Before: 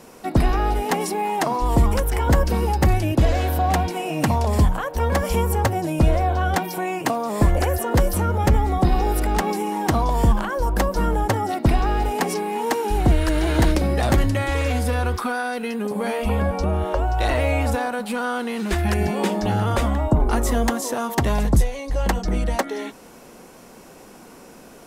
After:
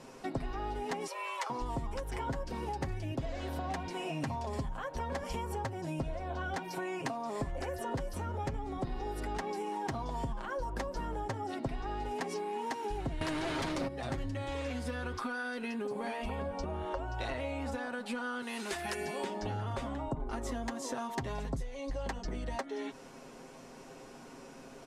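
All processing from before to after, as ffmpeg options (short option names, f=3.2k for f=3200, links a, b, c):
-filter_complex "[0:a]asettb=1/sr,asplit=3[a][b][c];[a]atrim=end=1.074[d];[b]atrim=start=1.07:end=1.5,asetpts=PTS-STARTPTS,afade=t=in:d=0.004:c=qsin,afade=t=out:st=0.426:d=0.004:c=qsin,highpass=f=1k:p=1,afreqshift=180[e];[c]atrim=start=1.496[f];[d][e]acrossfade=d=0.004:c1=hsin:c2=qsin[g];[g][f]acrossfade=d=0.004:c1=qsin:c2=hsin,asettb=1/sr,asplit=3[h][i][j];[h]atrim=end=13.214[k];[i]atrim=start=13.21:end=13.88,asetpts=PTS-STARTPTS,afade=t=in:d=0.004:c=qsin,afade=t=out:st=0.666:d=0.004:c=qsin,highpass=120,aeval=exprs='0.422*sin(PI/2*3.98*val(0)/0.422)':c=same[l];[j]atrim=start=13.876[m];[k][l]acrossfade=d=0.004:c1=hsin:c2=qsin[n];[n][m]acrossfade=d=0.004:c1=qsin:c2=hsin,asettb=1/sr,asplit=3[o][p][q];[o]atrim=end=18.424[r];[p]atrim=start=18.42:end=19.24,asetpts=PTS-STARTPTS,afade=t=in:d=0.004:c=qsin,afade=t=out:st=0.816:d=0.004:c=qsin,highpass=f=360:p=1,equalizer=f=12k:w=0.46:g=11.5[s];[q]atrim=start=19.236[t];[r][s]acrossfade=d=0.004:c1=hsin:c2=qsin[u];[u][t]acrossfade=d=0.004:c1=qsin:c2=hsin,lowpass=7.3k,aecho=1:1:7.5:0.58,acompressor=threshold=-27dB:ratio=6,volume=-7dB"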